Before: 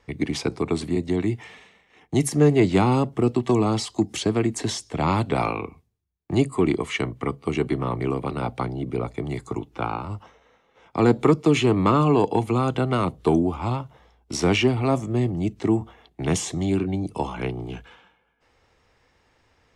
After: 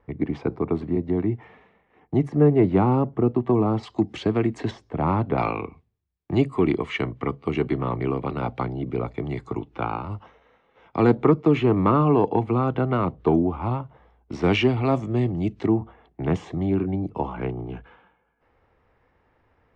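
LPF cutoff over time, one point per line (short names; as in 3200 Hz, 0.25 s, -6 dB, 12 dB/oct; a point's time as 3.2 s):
1300 Hz
from 3.83 s 2500 Hz
from 4.71 s 1400 Hz
from 5.38 s 3100 Hz
from 11.15 s 1900 Hz
from 14.44 s 3700 Hz
from 15.66 s 1700 Hz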